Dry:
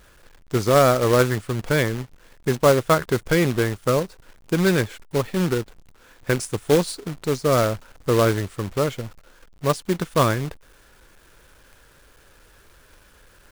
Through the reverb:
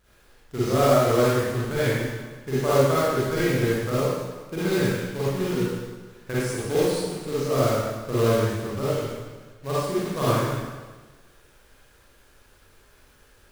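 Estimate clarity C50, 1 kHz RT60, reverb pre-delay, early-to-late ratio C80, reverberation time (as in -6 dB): -6.0 dB, 1.3 s, 31 ms, -1.0 dB, 1.4 s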